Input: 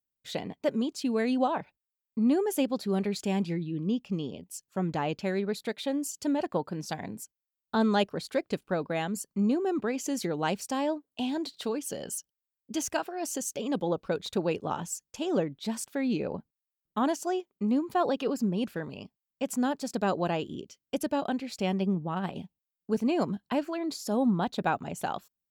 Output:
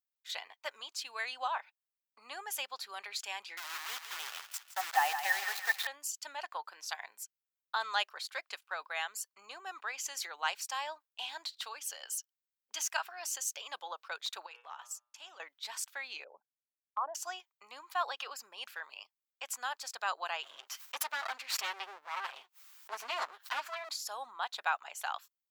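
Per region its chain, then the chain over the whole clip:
3.57–5.87 small resonant body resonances 790/1800 Hz, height 18 dB, ringing for 50 ms + requantised 6-bit, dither none + thinning echo 0.165 s, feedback 53%, high-pass 570 Hz, level -8 dB
14.46–15.4 transient shaper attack -3 dB, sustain -9 dB + de-hum 120.8 Hz, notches 30 + compressor, threshold -36 dBFS
16.24–17.15 formant sharpening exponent 2 + treble ducked by the level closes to 1100 Hz, closed at -26 dBFS + air absorption 370 m
20.43–23.89 minimum comb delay 7.6 ms + low shelf 230 Hz +7 dB + backwards sustainer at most 70 dB/s
whole clip: gate -43 dBFS, range -6 dB; HPF 980 Hz 24 dB/oct; bell 9400 Hz -4.5 dB 0.48 oct; gain +1 dB

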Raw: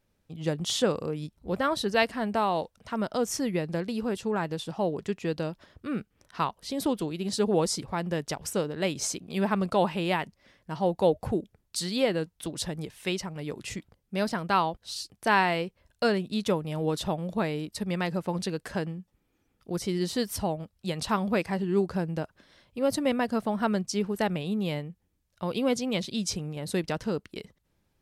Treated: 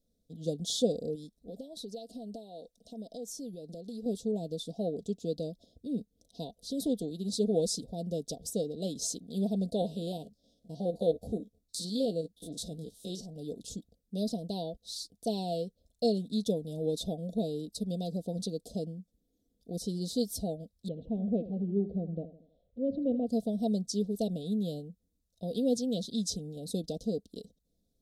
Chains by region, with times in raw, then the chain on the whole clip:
1.15–4.06 bell 79 Hz -12 dB 1.8 oct + compressor, threshold -35 dBFS
9.81–13.3 stepped spectrum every 50 ms + doubler 14 ms -14 dB
20.88–23.27 LPF 2100 Hz 24 dB/oct + envelope phaser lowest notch 210 Hz, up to 1300 Hz, full sweep at -29 dBFS + feedback echo 80 ms, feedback 45%, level -14 dB
whole clip: Chebyshev band-stop 660–3600 Hz, order 4; comb 4.2 ms, depth 55%; dynamic EQ 2100 Hz, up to +3 dB, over -38 dBFS, Q 0.78; gain -4.5 dB

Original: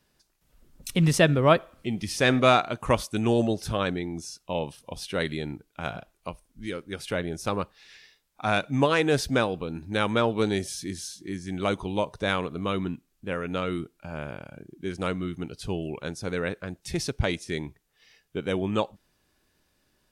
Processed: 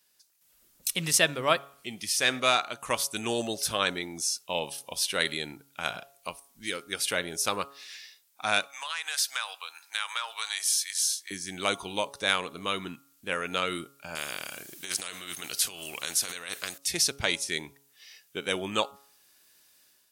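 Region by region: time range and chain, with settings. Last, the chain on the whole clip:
8.67–11.31 HPF 920 Hz 24 dB/oct + compressor 3:1, threshold -34 dBFS
14.15–16.78 bell 900 Hz -9 dB 0.24 oct + negative-ratio compressor -33 dBFS, ratio -0.5 + spectral compressor 2:1
whole clip: tilt +4 dB/oct; de-hum 139.2 Hz, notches 10; AGC gain up to 7.5 dB; gain -6 dB

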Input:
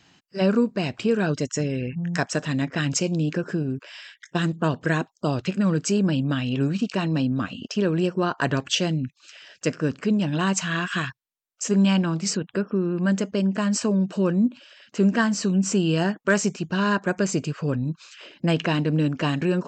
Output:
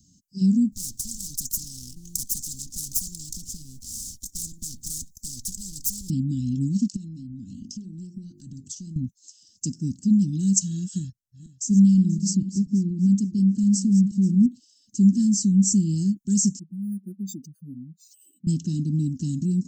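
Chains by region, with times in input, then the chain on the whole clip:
0.72–6.1 minimum comb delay 1.6 ms + tone controls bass +3 dB, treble +3 dB + spectral compressor 4:1
6.96–8.96 bell 1000 Hz -11.5 dB 0.34 oct + notches 50/100/150/200/250/300/350/400 Hz + compressor 12:1, threshold -33 dBFS
10.98–14.46 regenerating reverse delay 0.241 s, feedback 45%, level -13 dB + high shelf 5900 Hz -10.5 dB
16.59–18.47 spectral contrast raised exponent 2.7 + HPF 380 Hz + decimation joined by straight lines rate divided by 4×
whole clip: elliptic band-stop 200–6200 Hz, stop band 50 dB; comb 3.4 ms, depth 50%; gain +6 dB

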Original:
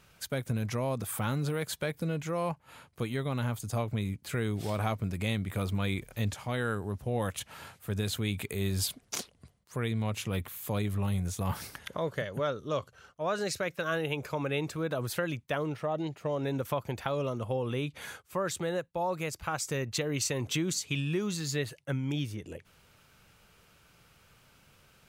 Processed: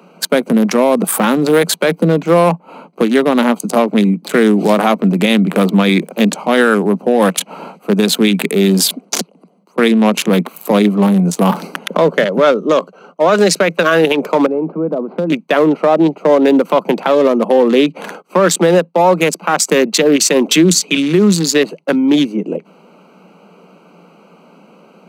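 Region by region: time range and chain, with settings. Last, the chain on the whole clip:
9.21–9.78 HPF 80 Hz + high shelf 8200 Hz +6 dB + compressor 16:1, threshold -59 dBFS
14.46–15.3 median filter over 15 samples + compressor 2:1, threshold -38 dBFS + tape spacing loss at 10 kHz 44 dB
whole clip: Wiener smoothing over 25 samples; steep high-pass 170 Hz 96 dB/oct; maximiser +26 dB; gain -1 dB

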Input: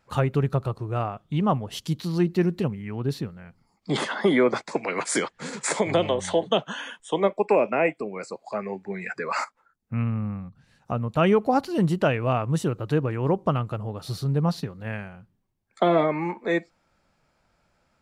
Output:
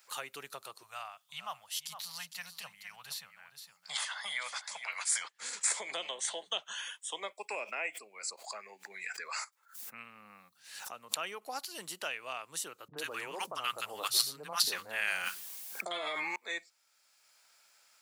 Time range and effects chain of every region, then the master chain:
0.83–5.25 Chebyshev band-stop 150–730 Hz + echo 0.46 s -12.5 dB
7.64–11.42 tremolo triangle 1.5 Hz, depth 35% + backwards sustainer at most 110 dB/s
12.88–16.36 three bands offset in time lows, mids, highs 40/90 ms, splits 210/1100 Hz + fast leveller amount 100%
whole clip: HPF 490 Hz 6 dB/oct; differentiator; three-band squash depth 40%; gain +3 dB

